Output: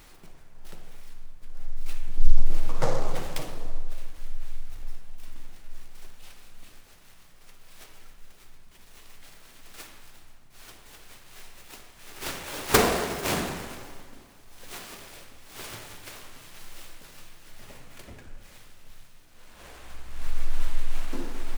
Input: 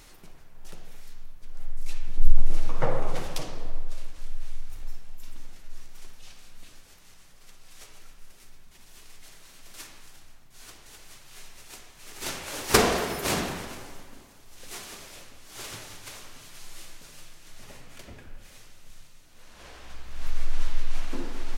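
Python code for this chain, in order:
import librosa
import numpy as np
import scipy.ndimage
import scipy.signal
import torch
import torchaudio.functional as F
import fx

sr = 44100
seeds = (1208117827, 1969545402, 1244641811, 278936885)

y = fx.noise_mod_delay(x, sr, seeds[0], noise_hz=4700.0, depth_ms=0.035)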